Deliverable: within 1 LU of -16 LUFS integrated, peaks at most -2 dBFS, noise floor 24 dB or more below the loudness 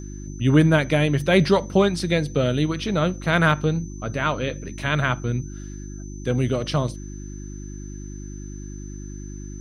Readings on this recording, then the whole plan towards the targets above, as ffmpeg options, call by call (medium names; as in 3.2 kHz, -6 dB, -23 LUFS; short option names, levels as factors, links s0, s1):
hum 50 Hz; highest harmonic 350 Hz; hum level -32 dBFS; steady tone 6.1 kHz; tone level -46 dBFS; loudness -22.0 LUFS; peak level -5.0 dBFS; loudness target -16.0 LUFS
-> -af "bandreject=f=50:t=h:w=4,bandreject=f=100:t=h:w=4,bandreject=f=150:t=h:w=4,bandreject=f=200:t=h:w=4,bandreject=f=250:t=h:w=4,bandreject=f=300:t=h:w=4,bandreject=f=350:t=h:w=4"
-af "bandreject=f=6100:w=30"
-af "volume=2,alimiter=limit=0.794:level=0:latency=1"